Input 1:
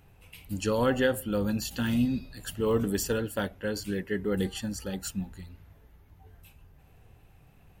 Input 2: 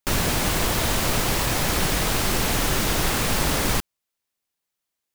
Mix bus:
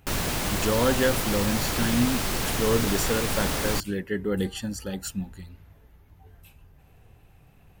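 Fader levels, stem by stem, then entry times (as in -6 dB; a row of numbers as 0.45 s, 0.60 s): +2.0 dB, -5.0 dB; 0.00 s, 0.00 s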